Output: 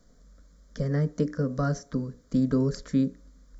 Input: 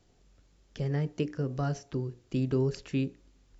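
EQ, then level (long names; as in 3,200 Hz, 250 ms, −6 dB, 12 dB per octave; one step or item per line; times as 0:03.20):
low-shelf EQ 190 Hz +4.5 dB
phaser with its sweep stopped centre 540 Hz, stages 8
+7.0 dB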